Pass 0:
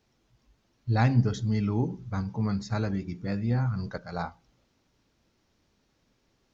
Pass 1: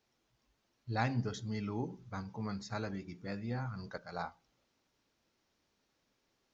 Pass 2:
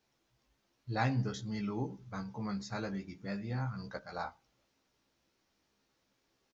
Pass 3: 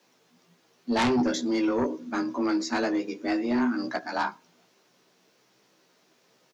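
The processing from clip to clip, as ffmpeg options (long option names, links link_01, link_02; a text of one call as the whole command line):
ffmpeg -i in.wav -af "lowshelf=frequency=240:gain=-10.5,volume=-5dB" out.wav
ffmpeg -i in.wav -filter_complex "[0:a]asplit=2[link_01][link_02];[link_02]adelay=15,volume=-5dB[link_03];[link_01][link_03]amix=inputs=2:normalize=0" out.wav
ffmpeg -i in.wav -af "afreqshift=120,aeval=exprs='0.106*sin(PI/2*2.82*val(0)/0.106)':channel_layout=same" out.wav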